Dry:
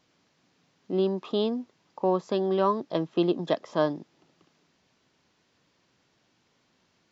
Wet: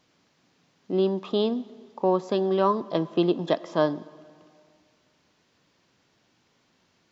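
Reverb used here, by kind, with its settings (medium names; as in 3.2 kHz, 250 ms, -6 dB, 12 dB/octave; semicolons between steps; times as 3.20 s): plate-style reverb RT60 2.1 s, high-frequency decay 0.75×, DRR 17.5 dB; trim +2 dB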